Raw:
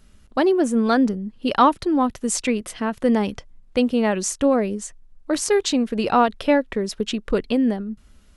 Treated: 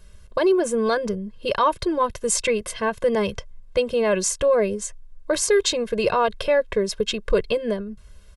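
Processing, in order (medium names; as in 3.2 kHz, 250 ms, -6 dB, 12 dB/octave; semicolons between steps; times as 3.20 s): peak limiter -13 dBFS, peak gain reduction 9 dB; comb 1.9 ms, depth 98%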